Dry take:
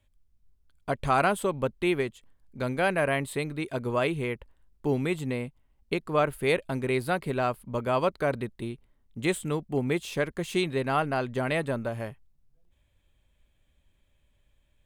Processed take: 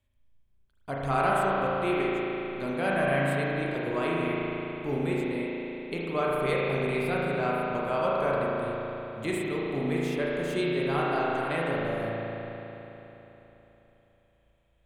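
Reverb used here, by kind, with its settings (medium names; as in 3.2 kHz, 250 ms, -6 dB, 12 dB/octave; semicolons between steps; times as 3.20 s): spring tank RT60 3.6 s, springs 36 ms, chirp 45 ms, DRR -5.5 dB; trim -6.5 dB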